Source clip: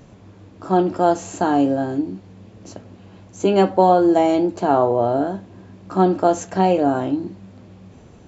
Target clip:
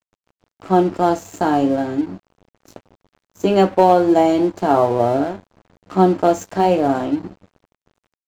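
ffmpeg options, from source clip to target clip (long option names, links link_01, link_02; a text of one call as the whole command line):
ffmpeg -i in.wav -af "volume=5dB,asoftclip=hard,volume=-5dB,flanger=delay=7.5:depth=6:regen=-56:speed=0.38:shape=triangular,aeval=exprs='sgn(val(0))*max(abs(val(0))-0.00891,0)':channel_layout=same,volume=6dB" out.wav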